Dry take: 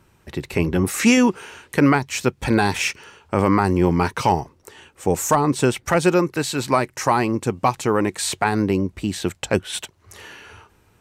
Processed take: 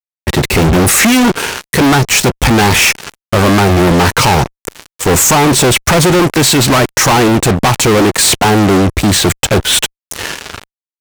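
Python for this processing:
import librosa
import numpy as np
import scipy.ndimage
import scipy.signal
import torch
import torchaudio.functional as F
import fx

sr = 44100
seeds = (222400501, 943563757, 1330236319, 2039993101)

y = fx.low_shelf(x, sr, hz=170.0, db=3.5)
y = fx.fuzz(y, sr, gain_db=37.0, gate_db=-38.0)
y = F.gain(torch.from_numpy(y), 6.0).numpy()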